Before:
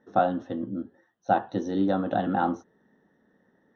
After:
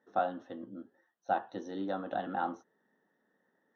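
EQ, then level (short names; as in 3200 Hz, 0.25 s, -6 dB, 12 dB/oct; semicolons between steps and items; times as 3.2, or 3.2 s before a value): LPF 1400 Hz 6 dB/oct; tilt +3.5 dB/oct; low shelf 150 Hz -4.5 dB; -5.0 dB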